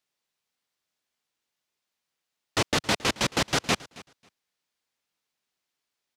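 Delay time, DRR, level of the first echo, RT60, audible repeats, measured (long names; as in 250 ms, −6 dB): 271 ms, no reverb audible, −20.5 dB, no reverb audible, 1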